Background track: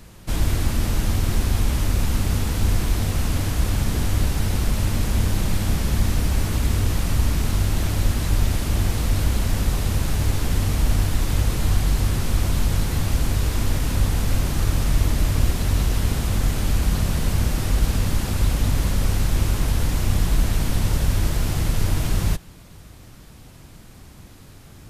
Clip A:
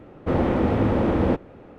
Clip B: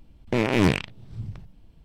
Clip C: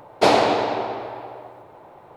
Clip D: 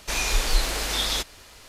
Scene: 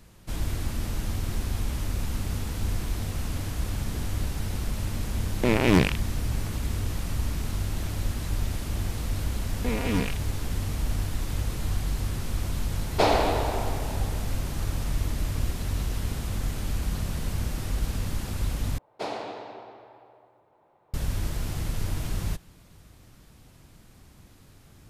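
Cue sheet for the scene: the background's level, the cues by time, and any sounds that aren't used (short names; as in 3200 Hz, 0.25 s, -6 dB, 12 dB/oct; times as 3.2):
background track -8.5 dB
5.11 add B
9.32 add B -10 dB + comb 4.2 ms, depth 97%
12.77 add C -6 dB
18.78 replace with C -17.5 dB
not used: A, D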